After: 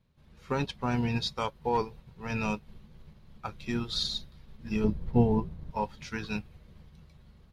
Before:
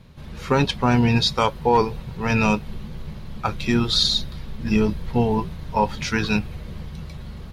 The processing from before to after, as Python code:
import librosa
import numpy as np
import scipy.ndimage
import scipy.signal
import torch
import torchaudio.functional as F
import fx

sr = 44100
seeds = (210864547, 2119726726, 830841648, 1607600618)

y = fx.tilt_shelf(x, sr, db=7.0, hz=970.0, at=(4.84, 5.71))
y = fx.upward_expand(y, sr, threshold_db=-39.0, expansion=1.5)
y = y * librosa.db_to_amplitude(-8.0)